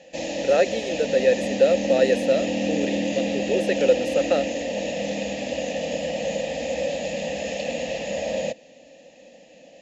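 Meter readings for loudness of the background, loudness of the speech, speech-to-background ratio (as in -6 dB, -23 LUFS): -27.0 LUFS, -23.0 LUFS, 4.0 dB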